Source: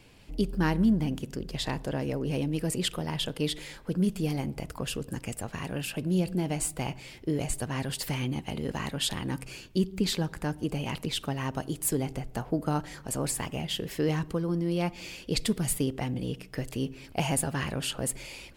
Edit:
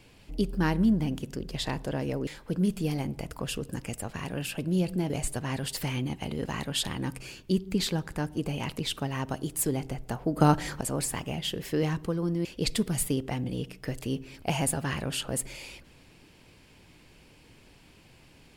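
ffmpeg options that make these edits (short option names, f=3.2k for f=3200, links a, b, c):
-filter_complex "[0:a]asplit=6[a][b][c][d][e][f];[a]atrim=end=2.272[g];[b]atrim=start=3.658:end=6.492[h];[c]atrim=start=7.358:end=12.632[i];[d]atrim=start=12.628:end=13.072,asetpts=PTS-STARTPTS,volume=8dB[j];[e]atrim=start=13.068:end=14.712[k];[f]atrim=start=15.148[l];[g][h]acrossfade=d=0.004:c1=hsin:c2=hsin[m];[m][i]acrossfade=d=0.004:c1=hsin:c2=hsin[n];[n][j]acrossfade=d=0.004:c1=hsin:c2=hsin[o];[o][k]acrossfade=d=0.004:c1=hsin:c2=hsin[p];[p][l]acrossfade=d=0.004:c1=hsin:c2=hsin"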